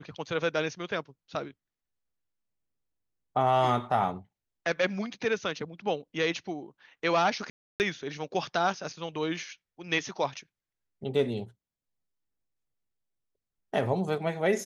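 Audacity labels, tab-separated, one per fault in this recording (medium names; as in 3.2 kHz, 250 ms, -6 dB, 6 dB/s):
7.500000	7.800000	dropout 299 ms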